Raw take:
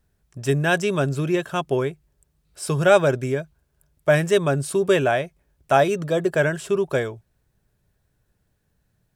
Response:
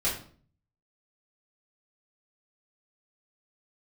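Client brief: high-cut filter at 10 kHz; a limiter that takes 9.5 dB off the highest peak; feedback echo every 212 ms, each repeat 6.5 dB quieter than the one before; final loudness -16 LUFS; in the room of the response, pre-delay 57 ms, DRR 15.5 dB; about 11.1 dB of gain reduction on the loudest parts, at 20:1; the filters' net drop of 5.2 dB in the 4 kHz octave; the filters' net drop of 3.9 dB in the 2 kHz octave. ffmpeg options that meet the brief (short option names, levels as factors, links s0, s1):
-filter_complex "[0:a]lowpass=10000,equalizer=f=2000:t=o:g=-4.5,equalizer=f=4000:t=o:g=-5,acompressor=threshold=0.0708:ratio=20,alimiter=limit=0.0668:level=0:latency=1,aecho=1:1:212|424|636|848|1060|1272:0.473|0.222|0.105|0.0491|0.0231|0.0109,asplit=2[s0][s1];[1:a]atrim=start_sample=2205,adelay=57[s2];[s1][s2]afir=irnorm=-1:irlink=0,volume=0.0631[s3];[s0][s3]amix=inputs=2:normalize=0,volume=6.31"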